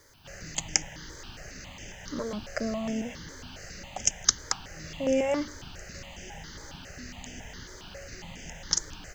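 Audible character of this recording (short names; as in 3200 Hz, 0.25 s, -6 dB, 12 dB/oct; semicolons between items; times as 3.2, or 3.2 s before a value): a quantiser's noise floor 12-bit, dither triangular; notches that jump at a steady rate 7.3 Hz 740–4100 Hz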